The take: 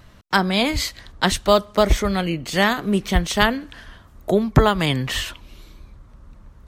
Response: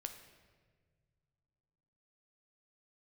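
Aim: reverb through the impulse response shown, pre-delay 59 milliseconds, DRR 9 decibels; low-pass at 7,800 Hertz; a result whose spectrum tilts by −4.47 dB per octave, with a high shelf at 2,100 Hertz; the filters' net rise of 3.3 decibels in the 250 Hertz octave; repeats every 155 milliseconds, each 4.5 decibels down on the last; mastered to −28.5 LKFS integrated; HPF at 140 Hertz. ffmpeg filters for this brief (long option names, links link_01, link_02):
-filter_complex "[0:a]highpass=140,lowpass=7800,equalizer=frequency=250:width_type=o:gain=5.5,highshelf=frequency=2100:gain=4,aecho=1:1:155|310|465|620|775|930|1085|1240|1395:0.596|0.357|0.214|0.129|0.0772|0.0463|0.0278|0.0167|0.01,asplit=2[link_01][link_02];[1:a]atrim=start_sample=2205,adelay=59[link_03];[link_02][link_03]afir=irnorm=-1:irlink=0,volume=-6dB[link_04];[link_01][link_04]amix=inputs=2:normalize=0,volume=-12dB"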